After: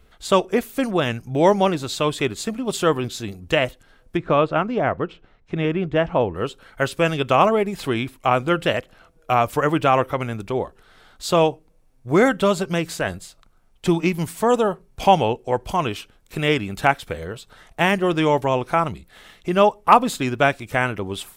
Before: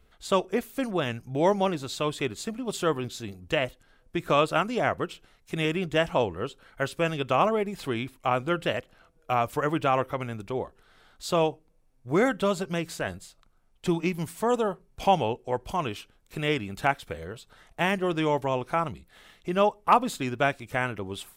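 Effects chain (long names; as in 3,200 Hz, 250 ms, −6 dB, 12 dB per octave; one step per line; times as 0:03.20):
0:04.17–0:06.35: head-to-tape spacing loss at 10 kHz 31 dB
level +7 dB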